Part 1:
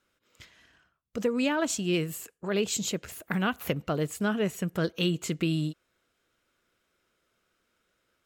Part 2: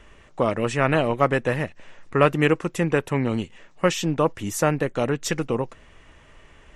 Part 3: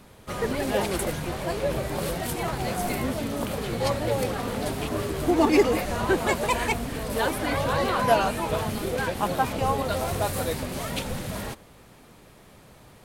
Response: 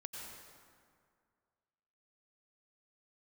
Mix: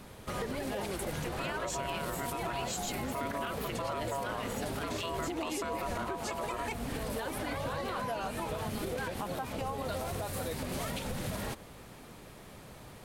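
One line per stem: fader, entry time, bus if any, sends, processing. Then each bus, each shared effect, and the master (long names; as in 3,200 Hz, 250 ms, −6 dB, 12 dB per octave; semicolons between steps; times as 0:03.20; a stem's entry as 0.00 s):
−2.5 dB, 0.00 s, no send, high-pass filter 1,000 Hz 12 dB per octave
−2.5 dB, 1.00 s, no send, parametric band 140 Hz +11.5 dB 0.36 octaves; downward compressor 4 to 1, threshold −26 dBFS, peak gain reduction 14.5 dB; ring modulation 830 Hz
+1.0 dB, 0.00 s, no send, downward compressor, threshold −33 dBFS, peak gain reduction 18 dB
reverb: not used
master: brickwall limiter −26.5 dBFS, peak gain reduction 10.5 dB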